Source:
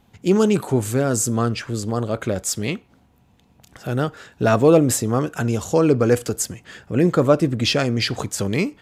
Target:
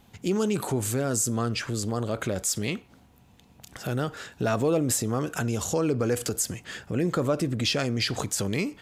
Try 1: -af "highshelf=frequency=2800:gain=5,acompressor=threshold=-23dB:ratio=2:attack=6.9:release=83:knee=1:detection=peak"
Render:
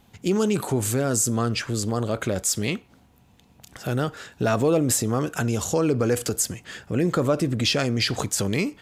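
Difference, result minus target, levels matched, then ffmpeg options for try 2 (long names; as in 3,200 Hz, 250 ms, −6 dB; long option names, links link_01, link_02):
downward compressor: peak gain reduction −3.5 dB
-af "highshelf=frequency=2800:gain=5,acompressor=threshold=-30dB:ratio=2:attack=6.9:release=83:knee=1:detection=peak"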